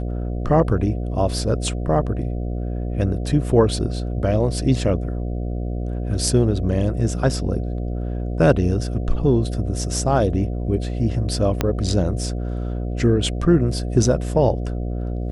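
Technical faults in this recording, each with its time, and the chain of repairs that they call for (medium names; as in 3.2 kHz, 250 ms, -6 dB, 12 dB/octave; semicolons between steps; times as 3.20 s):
buzz 60 Hz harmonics 12 -25 dBFS
11.61 s: pop -5 dBFS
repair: de-click; de-hum 60 Hz, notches 12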